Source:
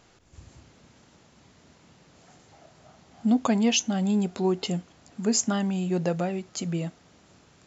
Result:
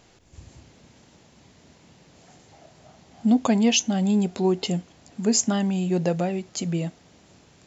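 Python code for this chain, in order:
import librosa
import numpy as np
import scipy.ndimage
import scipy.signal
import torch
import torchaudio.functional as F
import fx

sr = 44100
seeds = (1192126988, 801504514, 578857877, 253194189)

y = fx.peak_eq(x, sr, hz=1300.0, db=-5.0, octaves=0.61)
y = y * librosa.db_to_amplitude(3.0)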